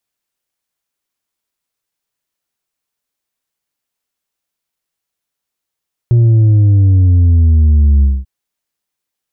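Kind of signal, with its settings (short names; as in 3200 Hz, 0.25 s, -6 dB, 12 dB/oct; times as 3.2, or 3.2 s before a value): sub drop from 120 Hz, over 2.14 s, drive 4 dB, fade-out 0.22 s, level -6 dB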